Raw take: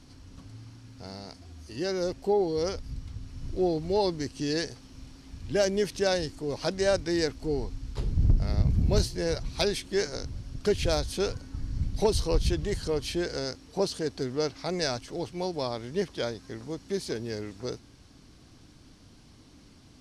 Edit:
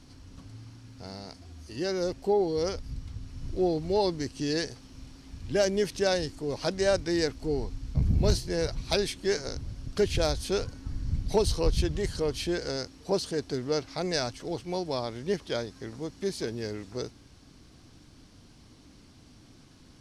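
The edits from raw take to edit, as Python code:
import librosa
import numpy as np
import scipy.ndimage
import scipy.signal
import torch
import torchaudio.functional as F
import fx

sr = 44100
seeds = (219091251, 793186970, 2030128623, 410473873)

y = fx.edit(x, sr, fx.cut(start_s=7.95, length_s=0.68), tone=tone)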